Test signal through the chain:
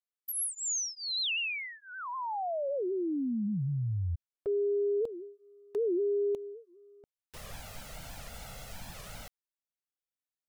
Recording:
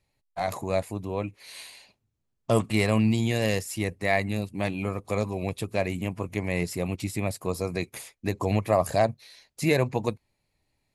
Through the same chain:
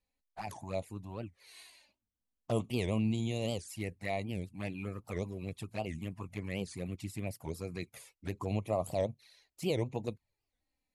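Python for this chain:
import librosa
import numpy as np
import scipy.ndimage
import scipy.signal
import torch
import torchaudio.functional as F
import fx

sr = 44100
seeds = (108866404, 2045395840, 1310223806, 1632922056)

y = fx.env_flanger(x, sr, rest_ms=4.0, full_db=-22.0)
y = fx.record_warp(y, sr, rpm=78.0, depth_cents=250.0)
y = y * 10.0 ** (-8.5 / 20.0)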